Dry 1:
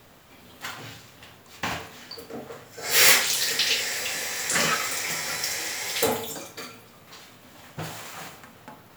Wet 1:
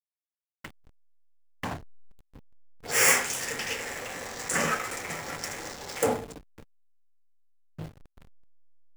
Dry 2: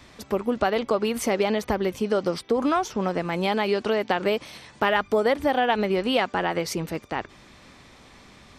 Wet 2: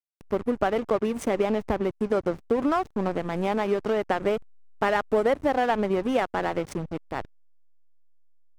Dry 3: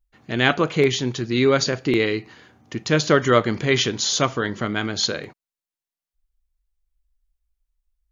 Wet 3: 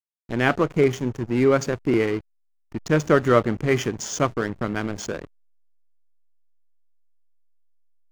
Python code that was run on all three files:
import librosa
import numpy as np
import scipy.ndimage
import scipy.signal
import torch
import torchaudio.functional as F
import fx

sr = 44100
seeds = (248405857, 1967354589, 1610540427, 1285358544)

y = fx.env_phaser(x, sr, low_hz=300.0, high_hz=4000.0, full_db=-26.0)
y = fx.backlash(y, sr, play_db=-26.0)